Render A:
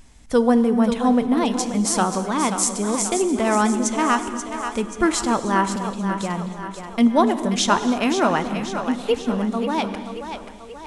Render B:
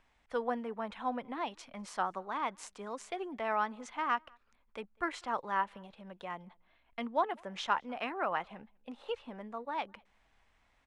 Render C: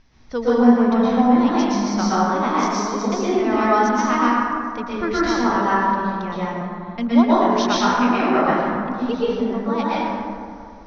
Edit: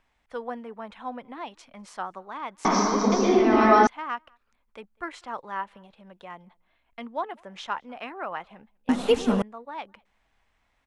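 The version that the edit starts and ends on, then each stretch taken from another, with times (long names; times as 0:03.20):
B
0:02.65–0:03.87: punch in from C
0:08.89–0:09.42: punch in from A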